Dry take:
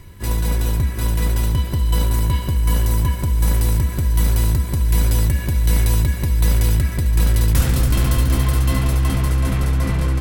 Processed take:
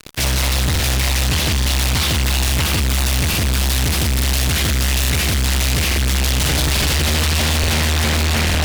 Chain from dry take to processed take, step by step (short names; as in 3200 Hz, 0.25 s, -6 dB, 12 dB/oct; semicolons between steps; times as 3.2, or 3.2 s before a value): minimum comb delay 1.4 ms; weighting filter D; varispeed +18%; low shelf 98 Hz +9.5 dB; thinning echo 0.155 s, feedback 76%, high-pass 180 Hz, level -10 dB; on a send at -11 dB: reverb RT60 0.95 s, pre-delay 0.11 s; on the sum: fuzz box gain 39 dB, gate -36 dBFS; crackling interface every 0.86 s, samples 2048, repeat, from 0.71; Doppler distortion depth 0.46 ms; gain -2 dB